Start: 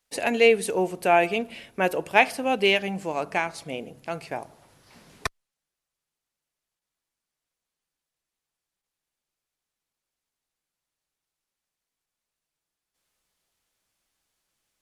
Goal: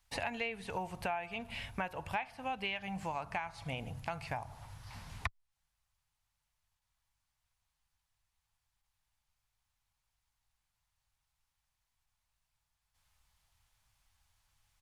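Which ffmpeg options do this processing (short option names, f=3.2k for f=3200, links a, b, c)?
-filter_complex "[0:a]acrossover=split=3900[a][b];[b]acompressor=threshold=-48dB:ratio=4:attack=1:release=60[c];[a][c]amix=inputs=2:normalize=0,firequalizer=gain_entry='entry(100,0);entry(160,-15);entry(370,-29);entry(860,-10);entry(1300,-14);entry(8500,-17)':delay=0.05:min_phase=1,acompressor=threshold=-51dB:ratio=8,volume=16dB"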